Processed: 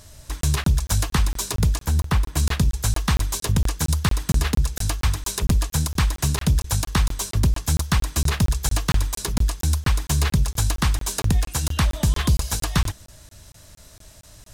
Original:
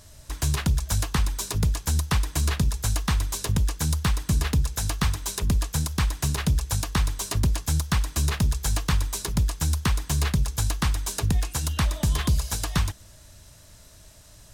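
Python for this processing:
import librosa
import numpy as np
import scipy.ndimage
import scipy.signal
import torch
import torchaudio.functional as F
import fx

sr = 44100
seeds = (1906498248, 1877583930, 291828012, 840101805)

y = fx.peak_eq(x, sr, hz=7200.0, db=-8.0, octaves=2.8, at=(1.86, 2.37))
y = fx.buffer_crackle(y, sr, first_s=0.41, period_s=0.23, block=1024, kind='zero')
y = y * 10.0 ** (3.5 / 20.0)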